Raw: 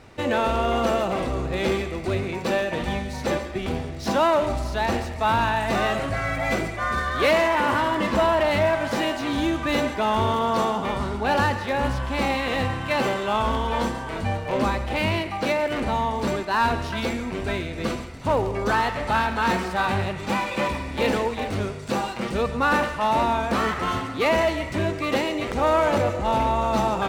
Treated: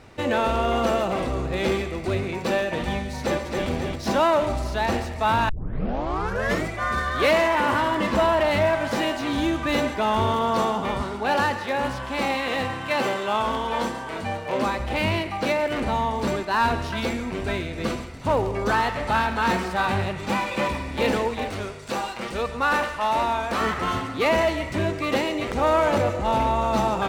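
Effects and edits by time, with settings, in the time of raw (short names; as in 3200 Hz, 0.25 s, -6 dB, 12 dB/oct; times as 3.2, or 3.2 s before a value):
3.18–3.68 echo throw 0.27 s, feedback 55%, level -4 dB
5.49 tape start 1.18 s
11.02–14.8 HPF 220 Hz 6 dB/oct
21.49–23.61 bell 150 Hz -8 dB 2.7 oct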